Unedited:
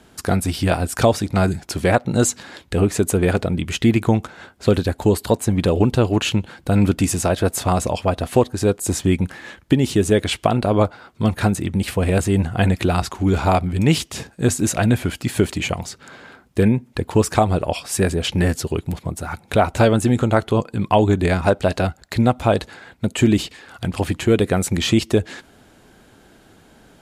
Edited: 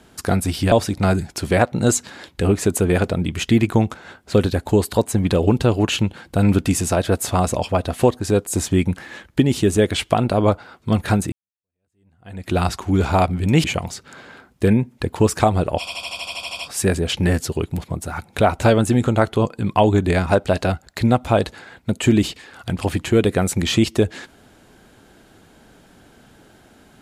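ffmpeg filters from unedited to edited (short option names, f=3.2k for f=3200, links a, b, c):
-filter_complex "[0:a]asplit=14[a][b][c][d][e][f][g][h][i][j][k][l][m][n];[a]atrim=end=0.722[o];[b]atrim=start=1.048:end=11.65,asetpts=PTS-STARTPTS,afade=t=out:st=10.598:d=0.004:c=hsin[p];[c]atrim=start=11.65:end=13.972,asetpts=PTS-STARTPTS,afade=t=in:d=1.24:c=exp[q];[d]atrim=start=15.588:end=17.822[r];[e]atrim=start=17.738:end=17.822[s];[f]atrim=start=17.738:end=17.822[t];[g]atrim=start=17.738:end=17.822[u];[h]atrim=start=17.738:end=17.822[v];[i]atrim=start=17.738:end=17.822[w];[j]atrim=start=17.738:end=17.822[x];[k]atrim=start=17.738:end=17.822[y];[l]atrim=start=17.738:end=17.822[z];[m]atrim=start=17.738:end=17.822[aa];[n]atrim=start=17.738[ab];[p][q]concat=n=2:v=0:a=1[ac];[o][ac]acrossfade=d=0.004:c1=hsin:c2=hsin[ad];[ad][r]acrossfade=d=0.004:c1=hsin:c2=hsin[ae];[ae][s]acrossfade=d=0.004:c1=hsin:c2=hsin[af];[af][t]acrossfade=d=0.004:c1=hsin:c2=hsin[ag];[ag][u]acrossfade=d=0.004:c1=hsin:c2=hsin[ah];[ah][v]acrossfade=d=0.004:c1=hsin:c2=hsin[ai];[ai][w]acrossfade=d=0.004:c1=hsin:c2=hsin[aj];[aj][x]acrossfade=d=0.004:c1=hsin:c2=hsin[ak];[ak][y]acrossfade=d=0.004:c1=hsin:c2=hsin[al];[al][z]acrossfade=d=0.004:c1=hsin:c2=hsin[am];[am][aa]acrossfade=d=0.004:c1=hsin:c2=hsin[an];[an][ab]acrossfade=d=0.004:c1=hsin:c2=hsin"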